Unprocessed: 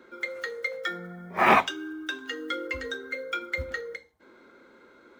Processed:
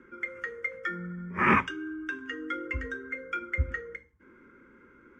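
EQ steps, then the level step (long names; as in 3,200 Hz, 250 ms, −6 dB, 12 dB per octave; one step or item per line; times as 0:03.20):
high-frequency loss of the air 97 metres
low-shelf EQ 170 Hz +11.5 dB
phaser with its sweep stopped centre 1,700 Hz, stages 4
0.0 dB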